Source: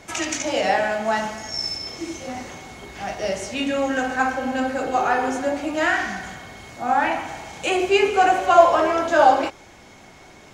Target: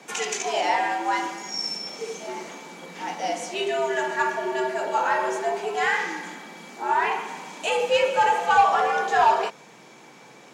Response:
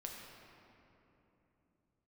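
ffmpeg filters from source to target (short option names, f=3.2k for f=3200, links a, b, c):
-af "afreqshift=120,acontrast=63,volume=-8.5dB"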